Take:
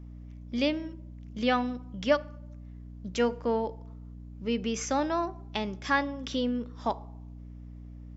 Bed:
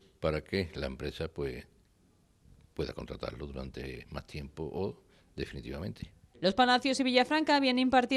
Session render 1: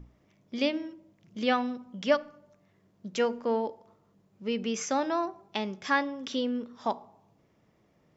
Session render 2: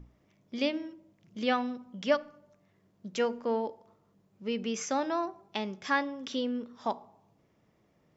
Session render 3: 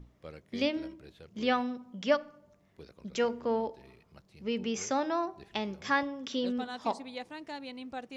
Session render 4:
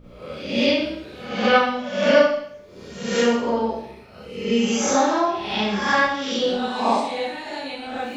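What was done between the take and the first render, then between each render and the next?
hum notches 60/120/180/240/300 Hz
trim -2 dB
add bed -15.5 dB
reverse spectral sustain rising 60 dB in 0.75 s; Schroeder reverb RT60 0.66 s, combs from 30 ms, DRR -9.5 dB

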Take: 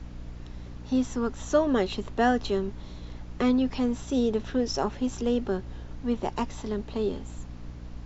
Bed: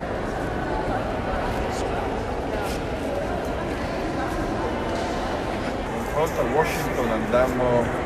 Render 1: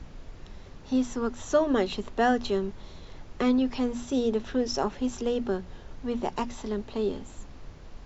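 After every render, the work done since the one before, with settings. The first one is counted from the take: hum notches 60/120/180/240/300 Hz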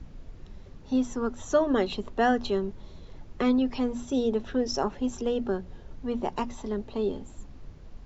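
noise reduction 7 dB, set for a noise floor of -46 dBFS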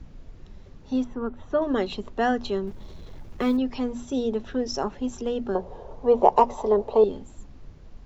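1.04–1.62 s: distance through air 370 m; 2.67–3.57 s: companding laws mixed up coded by mu; 5.55–7.04 s: high-order bell 670 Hz +15.5 dB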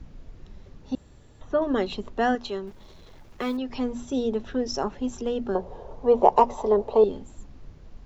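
0.95–1.41 s: room tone; 2.35–3.70 s: bass shelf 380 Hz -9 dB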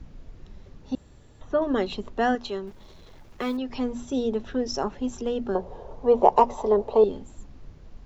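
no audible change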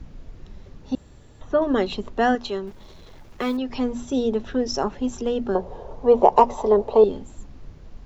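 trim +3.5 dB; peak limiter -2 dBFS, peak gain reduction 2.5 dB

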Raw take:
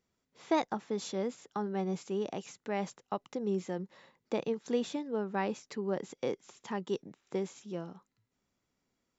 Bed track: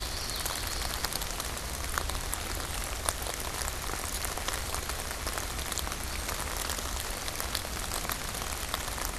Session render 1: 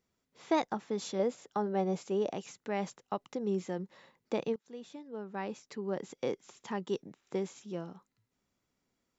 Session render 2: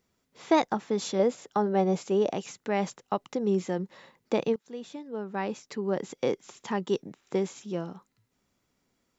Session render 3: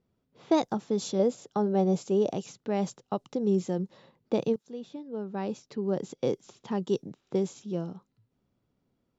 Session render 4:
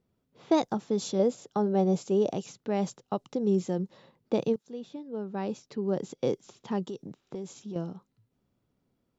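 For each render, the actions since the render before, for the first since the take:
1.19–2.32 s: dynamic bell 600 Hz, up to +8 dB, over -51 dBFS, Q 1.6; 4.56–6.25 s: fade in, from -23 dB
trim +6.5 dB
level-controlled noise filter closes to 2.6 kHz, open at -24 dBFS; graphic EQ 125/1000/2000 Hz +5/-4/-10 dB
6.83–7.76 s: compression 4:1, threshold -35 dBFS

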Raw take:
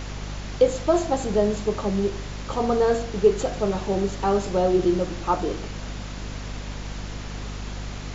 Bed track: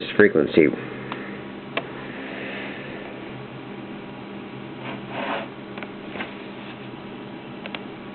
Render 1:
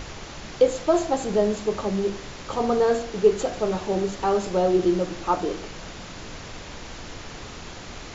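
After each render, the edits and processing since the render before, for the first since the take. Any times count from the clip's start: hum notches 50/100/150/200/250 Hz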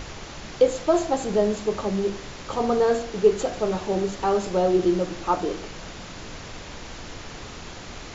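no audible change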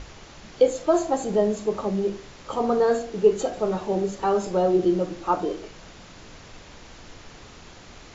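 noise print and reduce 7 dB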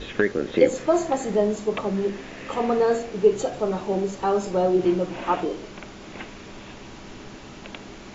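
add bed track -7 dB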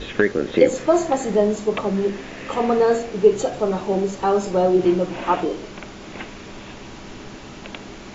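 trim +3.5 dB; peak limiter -3 dBFS, peak gain reduction 2 dB

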